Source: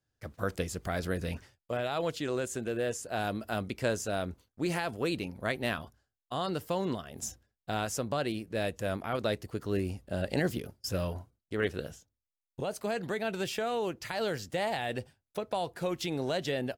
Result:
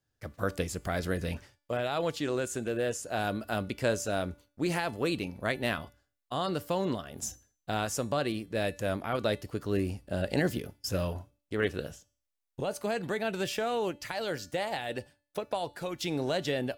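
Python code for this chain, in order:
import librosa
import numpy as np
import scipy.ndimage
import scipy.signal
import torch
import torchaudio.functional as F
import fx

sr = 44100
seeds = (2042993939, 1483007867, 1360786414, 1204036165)

y = fx.hpss(x, sr, part='harmonic', gain_db=-6, at=(13.9, 16.06))
y = fx.comb_fb(y, sr, f0_hz=290.0, decay_s=0.46, harmonics='all', damping=0.0, mix_pct=50)
y = y * librosa.db_to_amplitude(7.0)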